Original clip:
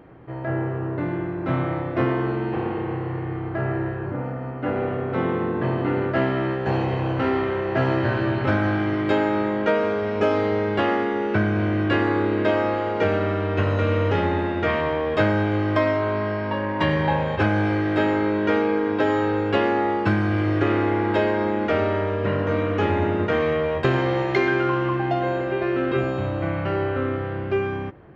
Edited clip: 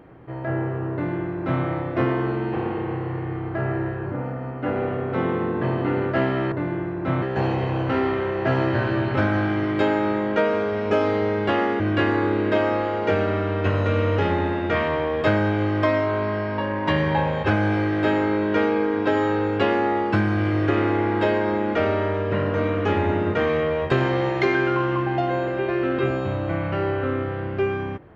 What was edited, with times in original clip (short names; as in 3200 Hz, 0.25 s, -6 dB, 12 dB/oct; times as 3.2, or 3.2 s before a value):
0.93–1.63 copy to 6.52
11.1–11.73 cut